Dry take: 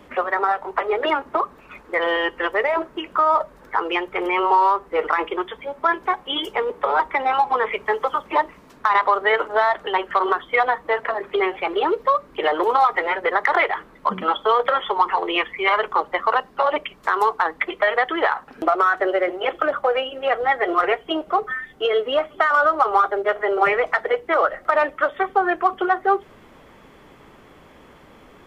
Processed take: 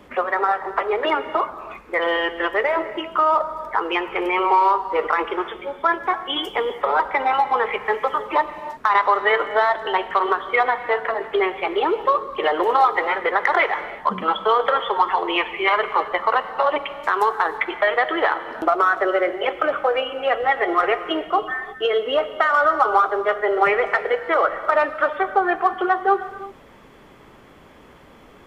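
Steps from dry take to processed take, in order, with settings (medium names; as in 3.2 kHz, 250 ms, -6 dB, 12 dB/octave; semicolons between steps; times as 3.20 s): gated-style reverb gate 370 ms flat, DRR 10.5 dB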